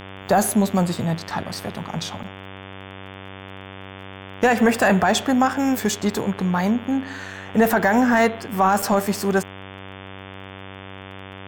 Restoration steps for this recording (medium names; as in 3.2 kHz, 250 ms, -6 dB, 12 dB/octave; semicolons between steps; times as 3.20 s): de-click; de-hum 96.2 Hz, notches 37; interpolate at 2.23/8.82 s, 5.3 ms